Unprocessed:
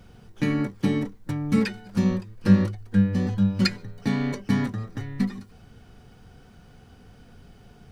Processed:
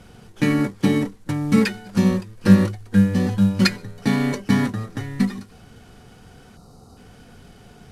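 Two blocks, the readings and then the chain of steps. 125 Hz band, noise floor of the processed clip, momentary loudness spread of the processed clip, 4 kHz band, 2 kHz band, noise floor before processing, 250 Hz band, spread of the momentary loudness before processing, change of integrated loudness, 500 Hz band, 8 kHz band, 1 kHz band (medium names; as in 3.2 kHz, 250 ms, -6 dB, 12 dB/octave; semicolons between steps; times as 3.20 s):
+3.5 dB, -48 dBFS, 10 LU, +5.0 dB, +6.5 dB, -52 dBFS, +4.5 dB, 10 LU, +4.5 dB, +6.0 dB, no reading, +6.5 dB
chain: CVSD coder 64 kbps; time-frequency box 6.56–6.97 s, 1.4–3.7 kHz -17 dB; bass shelf 120 Hz -6.5 dB; trim +6.5 dB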